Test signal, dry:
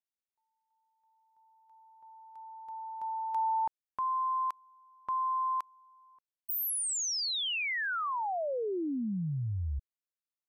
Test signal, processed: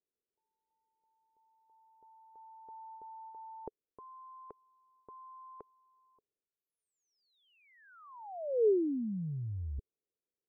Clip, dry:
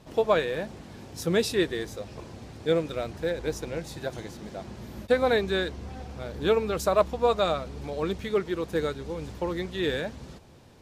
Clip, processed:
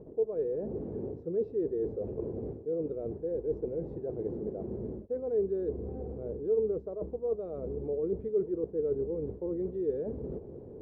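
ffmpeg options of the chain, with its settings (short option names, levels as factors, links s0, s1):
-af "areverse,acompressor=threshold=0.01:ratio=12:attack=7.3:release=130:knee=1:detection=rms,areverse,lowpass=f=430:t=q:w=4.9,volume=1.5"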